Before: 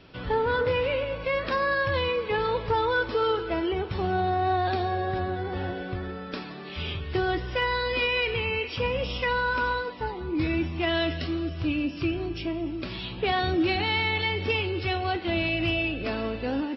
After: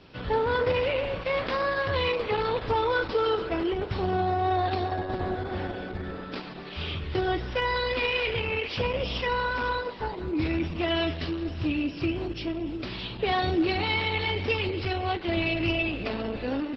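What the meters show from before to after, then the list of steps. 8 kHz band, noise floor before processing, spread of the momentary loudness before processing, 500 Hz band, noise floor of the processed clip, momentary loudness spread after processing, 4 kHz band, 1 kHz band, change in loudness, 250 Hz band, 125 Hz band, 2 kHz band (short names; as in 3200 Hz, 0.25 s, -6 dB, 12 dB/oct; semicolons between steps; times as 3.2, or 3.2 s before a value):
n/a, -38 dBFS, 8 LU, -0.5 dB, -39 dBFS, 8 LU, -1.0 dB, -1.0 dB, -1.0 dB, -0.5 dB, -0.5 dB, -2.0 dB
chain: dynamic EQ 1600 Hz, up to -4 dB, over -41 dBFS, Q 4.7; Opus 10 kbps 48000 Hz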